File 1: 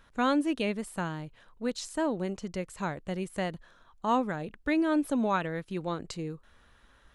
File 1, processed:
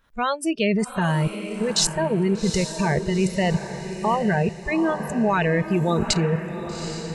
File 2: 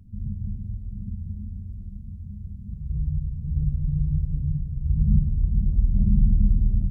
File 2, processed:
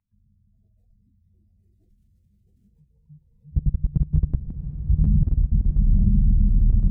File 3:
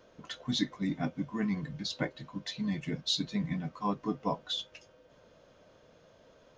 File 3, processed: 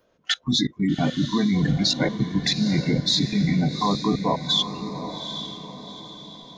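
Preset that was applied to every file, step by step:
level quantiser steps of 22 dB; spectral noise reduction 23 dB; diffused feedback echo 0.797 s, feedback 44%, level -9 dB; match loudness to -23 LUFS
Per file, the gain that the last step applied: +24.5, +6.0, +23.5 dB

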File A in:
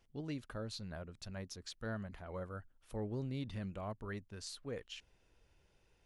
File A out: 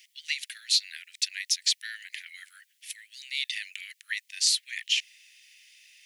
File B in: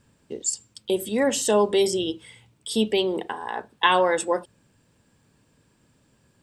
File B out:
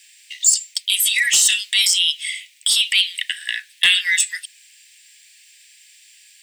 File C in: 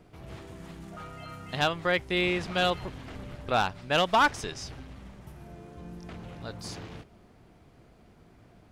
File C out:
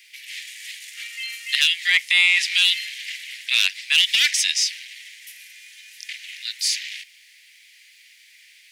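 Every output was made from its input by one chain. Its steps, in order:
steep high-pass 1900 Hz 72 dB/oct; in parallel at -1.5 dB: negative-ratio compressor -38 dBFS, ratio -1; on the sum: soft clip -19.5 dBFS; normalise peaks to -6 dBFS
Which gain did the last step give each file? +19.0, +13.5, +13.5 dB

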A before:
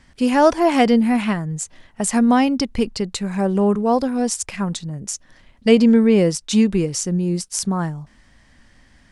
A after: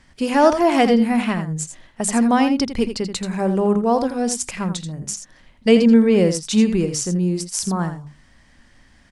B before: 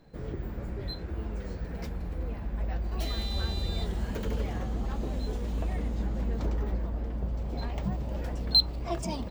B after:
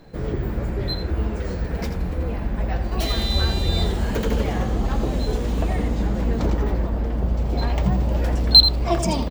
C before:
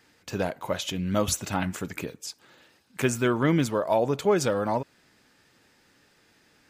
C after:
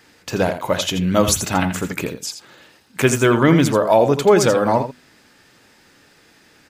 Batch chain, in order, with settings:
notches 50/100/150/200/250 Hz; on a send: echo 83 ms -9.5 dB; on the sum: normalise peaks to -1.5 dBFS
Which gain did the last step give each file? -0.5, +11.0, +9.0 dB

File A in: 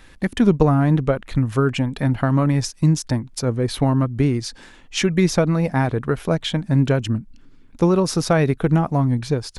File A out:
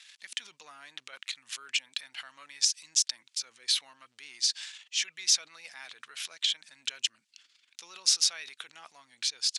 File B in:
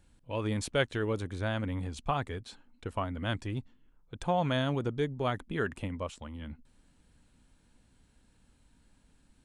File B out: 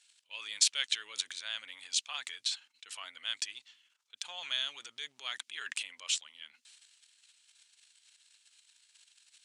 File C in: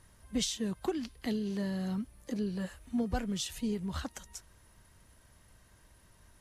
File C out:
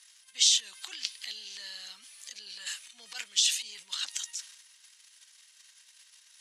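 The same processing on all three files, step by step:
transient shaper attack -5 dB, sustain +10 dB; compressor 1.5:1, threshold -31 dBFS; Butterworth band-pass 4900 Hz, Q 0.87; normalise peaks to -9 dBFS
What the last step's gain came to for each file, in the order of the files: +2.5, +10.5, +12.0 dB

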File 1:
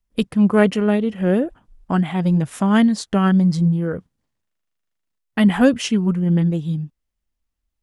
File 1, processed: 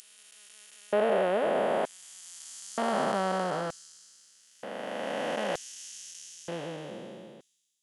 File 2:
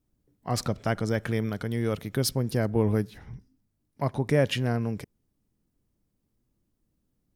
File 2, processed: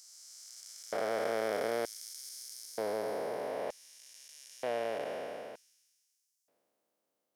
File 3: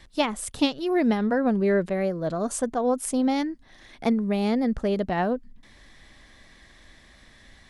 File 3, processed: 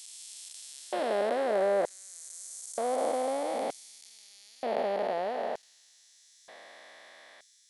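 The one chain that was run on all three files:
time blur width 1.33 s; LFO high-pass square 0.54 Hz 620–6400 Hz; gain +3 dB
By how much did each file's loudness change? -13.0, -9.0, -7.0 LU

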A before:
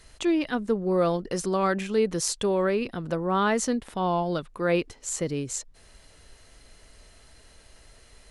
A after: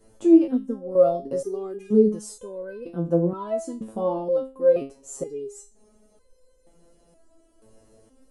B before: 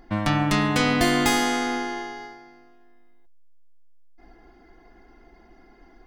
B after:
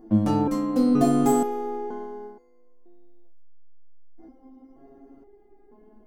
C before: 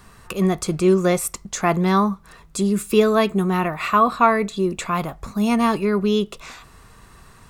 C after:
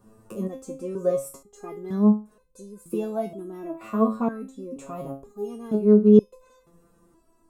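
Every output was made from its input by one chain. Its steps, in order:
ten-band EQ 250 Hz +12 dB, 500 Hz +9 dB, 2000 Hz -11 dB, 4000 Hz -10 dB; stepped resonator 2.1 Hz 110–510 Hz; match loudness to -23 LUFS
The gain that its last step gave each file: +5.5, +7.0, -1.5 dB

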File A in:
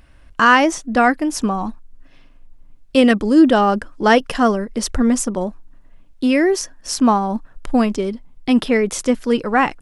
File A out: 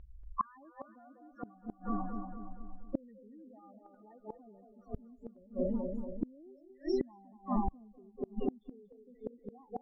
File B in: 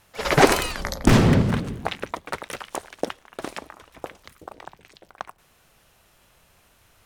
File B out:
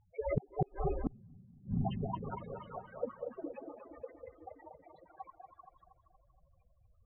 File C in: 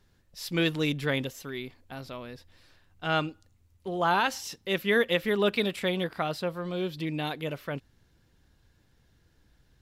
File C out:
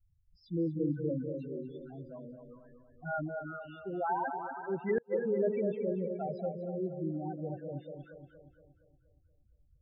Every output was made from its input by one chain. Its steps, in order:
delay with a stepping band-pass 0.194 s, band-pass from 530 Hz, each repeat 1.4 oct, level -6 dB; loudest bins only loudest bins 4; limiter -14 dBFS; air absorption 310 m; darkening echo 0.235 s, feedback 53%, low-pass 2300 Hz, level -7 dB; flipped gate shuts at -17 dBFS, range -33 dB; gain -2.5 dB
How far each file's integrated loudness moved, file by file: -23.0, -17.5, -6.5 LU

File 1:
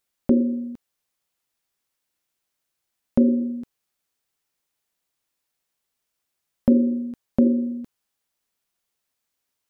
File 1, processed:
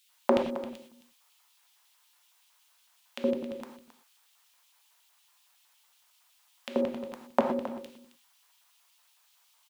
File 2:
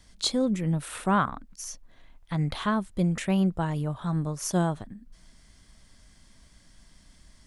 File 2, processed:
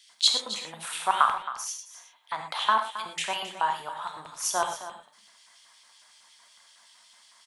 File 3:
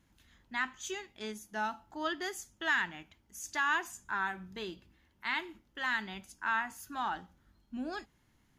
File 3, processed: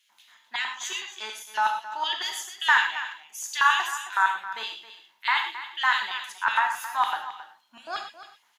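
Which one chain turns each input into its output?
LFO high-pass square 5.4 Hz 950–3000 Hz; echo 0.268 s -13.5 dB; non-linear reverb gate 0.14 s flat, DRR 4 dB; normalise peaks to -6 dBFS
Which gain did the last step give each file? +11.0, +1.5, +6.5 dB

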